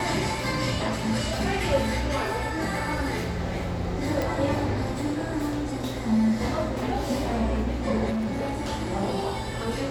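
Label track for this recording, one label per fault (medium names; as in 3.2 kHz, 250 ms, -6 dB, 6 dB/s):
4.220000	4.220000	pop
8.090000	8.700000	clipped -24.5 dBFS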